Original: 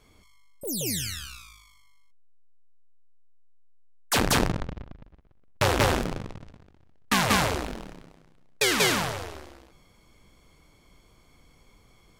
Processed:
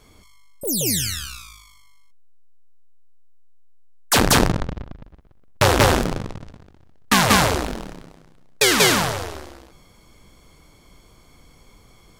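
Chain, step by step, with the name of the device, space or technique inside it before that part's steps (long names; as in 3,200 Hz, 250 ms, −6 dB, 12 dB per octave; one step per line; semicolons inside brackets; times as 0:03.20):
exciter from parts (in parallel at −12 dB: high-pass filter 2,200 Hz 24 dB per octave + soft clipping −19.5 dBFS, distortion −12 dB)
on the sum: level +7 dB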